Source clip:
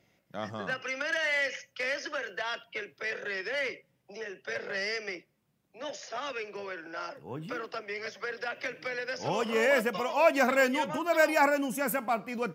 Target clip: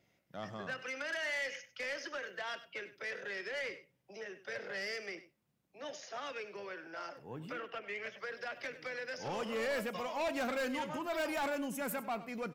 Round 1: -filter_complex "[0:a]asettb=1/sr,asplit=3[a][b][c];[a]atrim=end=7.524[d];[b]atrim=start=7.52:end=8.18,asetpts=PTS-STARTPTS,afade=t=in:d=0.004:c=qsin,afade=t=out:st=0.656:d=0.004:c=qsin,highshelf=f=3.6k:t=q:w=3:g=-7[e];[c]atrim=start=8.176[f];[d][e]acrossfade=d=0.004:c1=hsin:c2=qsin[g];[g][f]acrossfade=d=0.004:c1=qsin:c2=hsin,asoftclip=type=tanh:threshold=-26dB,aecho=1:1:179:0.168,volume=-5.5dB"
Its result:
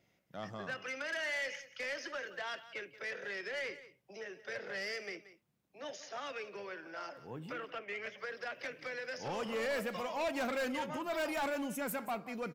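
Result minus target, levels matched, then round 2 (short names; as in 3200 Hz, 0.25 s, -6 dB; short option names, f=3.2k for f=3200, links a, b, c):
echo 81 ms late
-filter_complex "[0:a]asettb=1/sr,asplit=3[a][b][c];[a]atrim=end=7.524[d];[b]atrim=start=7.52:end=8.18,asetpts=PTS-STARTPTS,afade=t=in:d=0.004:c=qsin,afade=t=out:st=0.656:d=0.004:c=qsin,highshelf=f=3.6k:t=q:w=3:g=-7[e];[c]atrim=start=8.176[f];[d][e]acrossfade=d=0.004:c1=hsin:c2=qsin[g];[g][f]acrossfade=d=0.004:c1=qsin:c2=hsin,asoftclip=type=tanh:threshold=-26dB,aecho=1:1:98:0.168,volume=-5.5dB"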